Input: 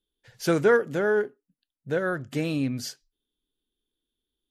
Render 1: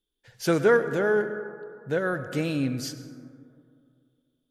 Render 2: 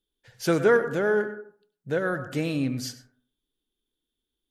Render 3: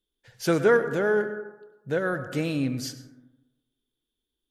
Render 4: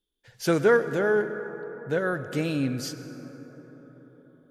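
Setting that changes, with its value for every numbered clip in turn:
plate-style reverb, RT60: 2.4, 0.52, 1.1, 5.2 s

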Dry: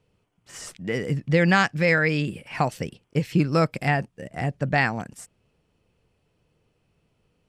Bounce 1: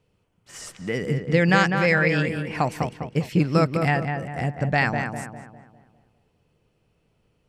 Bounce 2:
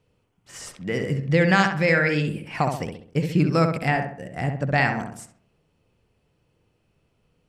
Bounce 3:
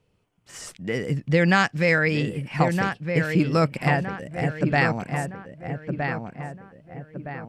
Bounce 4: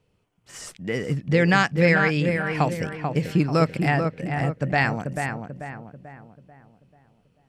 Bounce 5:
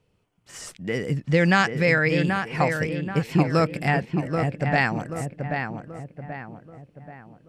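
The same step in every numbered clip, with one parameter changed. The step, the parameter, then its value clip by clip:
darkening echo, time: 201, 66, 1265, 439, 782 ms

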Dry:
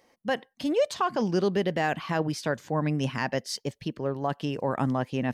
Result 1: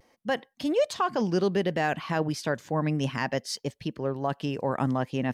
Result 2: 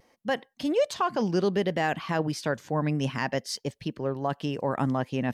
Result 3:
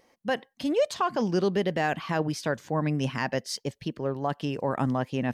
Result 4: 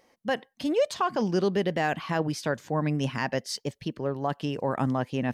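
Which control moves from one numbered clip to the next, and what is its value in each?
vibrato, rate: 0.41, 0.68, 2.6, 4.7 Hz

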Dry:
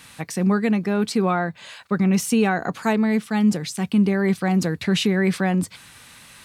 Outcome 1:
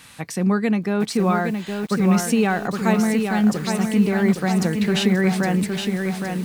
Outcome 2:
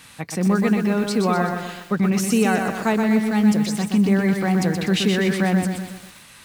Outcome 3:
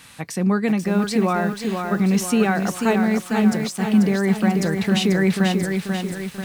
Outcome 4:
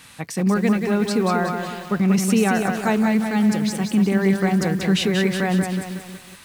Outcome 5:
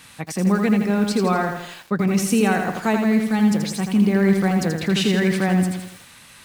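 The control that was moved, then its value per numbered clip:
lo-fi delay, time: 815, 124, 489, 184, 82 ms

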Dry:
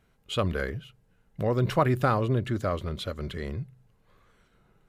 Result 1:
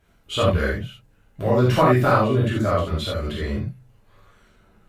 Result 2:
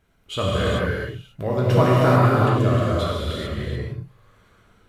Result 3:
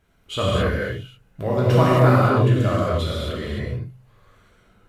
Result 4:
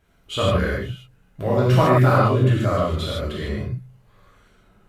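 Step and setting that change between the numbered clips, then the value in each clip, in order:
non-linear reverb, gate: 0.11, 0.46, 0.29, 0.18 s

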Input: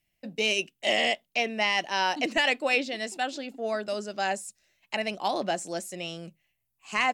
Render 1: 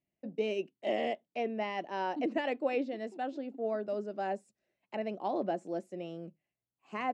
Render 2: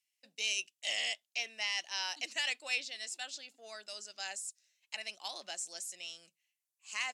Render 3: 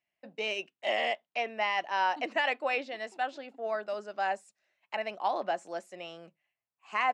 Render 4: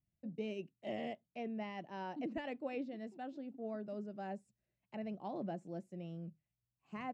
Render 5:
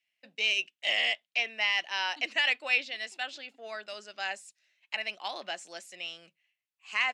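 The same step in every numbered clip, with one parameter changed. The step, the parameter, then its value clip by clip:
band-pass, frequency: 340, 6800, 1000, 110, 2600 Hz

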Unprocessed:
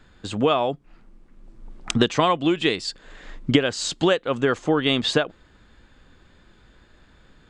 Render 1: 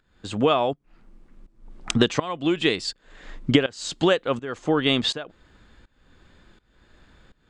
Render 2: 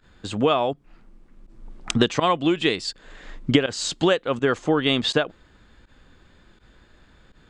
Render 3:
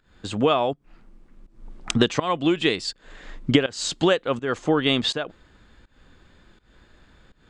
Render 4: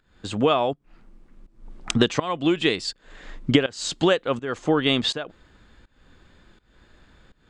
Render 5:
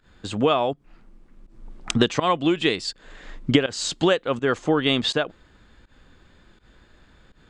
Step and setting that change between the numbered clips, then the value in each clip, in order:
pump, release: 528, 68, 234, 349, 114 ms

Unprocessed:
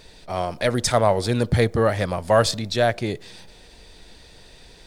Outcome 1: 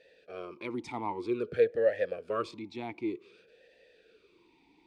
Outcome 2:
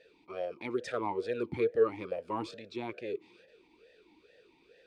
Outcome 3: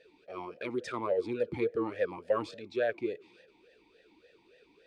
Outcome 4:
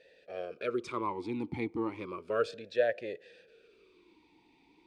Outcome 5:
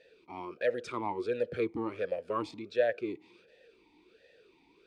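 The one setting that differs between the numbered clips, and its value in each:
vowel sweep, rate: 0.53, 2.3, 3.5, 0.33, 1.4 Hz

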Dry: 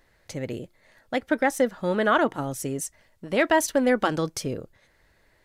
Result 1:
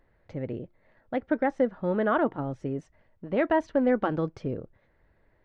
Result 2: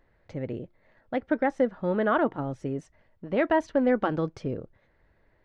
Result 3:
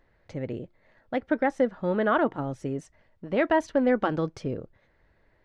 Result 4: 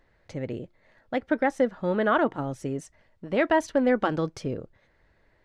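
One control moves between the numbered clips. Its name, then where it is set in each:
tape spacing loss, at 10 kHz: 46, 37, 29, 20 dB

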